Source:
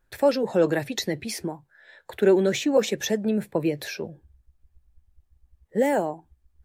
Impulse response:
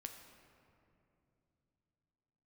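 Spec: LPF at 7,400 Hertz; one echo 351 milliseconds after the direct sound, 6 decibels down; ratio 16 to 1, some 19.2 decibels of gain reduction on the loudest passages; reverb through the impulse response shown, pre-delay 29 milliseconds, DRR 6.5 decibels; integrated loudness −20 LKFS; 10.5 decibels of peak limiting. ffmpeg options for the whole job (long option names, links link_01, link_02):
-filter_complex "[0:a]lowpass=7400,acompressor=threshold=-33dB:ratio=16,alimiter=level_in=6dB:limit=-24dB:level=0:latency=1,volume=-6dB,aecho=1:1:351:0.501,asplit=2[link_01][link_02];[1:a]atrim=start_sample=2205,adelay=29[link_03];[link_02][link_03]afir=irnorm=-1:irlink=0,volume=-2dB[link_04];[link_01][link_04]amix=inputs=2:normalize=0,volume=19.5dB"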